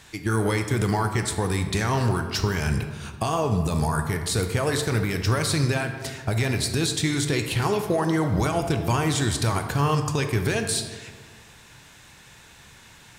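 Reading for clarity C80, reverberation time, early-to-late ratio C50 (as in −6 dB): 9.0 dB, 1.6 s, 7.5 dB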